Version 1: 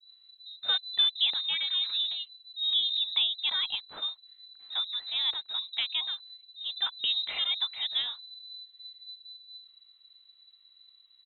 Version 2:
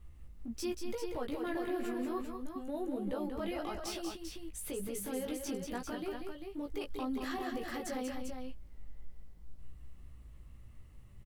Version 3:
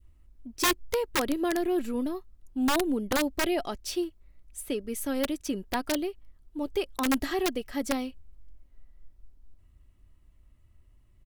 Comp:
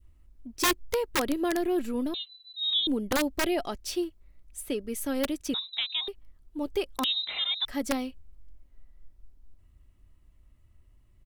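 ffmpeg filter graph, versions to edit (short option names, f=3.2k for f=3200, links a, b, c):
-filter_complex "[0:a]asplit=3[a][b][c];[2:a]asplit=4[d][e][f][g];[d]atrim=end=2.142[h];[a]atrim=start=2.138:end=2.872[i];[e]atrim=start=2.868:end=5.542[j];[b]atrim=start=5.538:end=6.082[k];[f]atrim=start=6.078:end=7.042[l];[c]atrim=start=7.038:end=7.652[m];[g]atrim=start=7.648[n];[h][i]acrossfade=d=0.004:c1=hsin:c2=hsin[o];[o][j]acrossfade=d=0.004:c1=hsin:c2=hsin[p];[p][k]acrossfade=d=0.004:c1=hsin:c2=hsin[q];[q][l]acrossfade=d=0.004:c1=hsin:c2=hsin[r];[r][m]acrossfade=d=0.004:c1=hsin:c2=hsin[s];[s][n]acrossfade=d=0.004:c1=hsin:c2=hsin"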